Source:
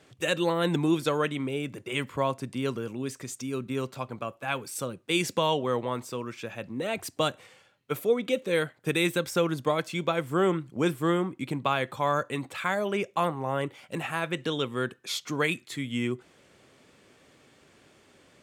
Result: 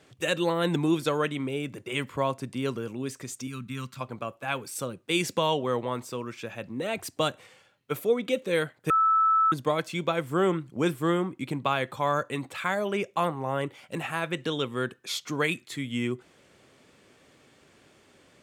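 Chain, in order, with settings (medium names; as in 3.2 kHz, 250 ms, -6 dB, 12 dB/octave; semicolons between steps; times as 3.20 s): 3.47–4.01 s: high-order bell 510 Hz -15.5 dB; 8.90–9.52 s: bleep 1.31 kHz -18.5 dBFS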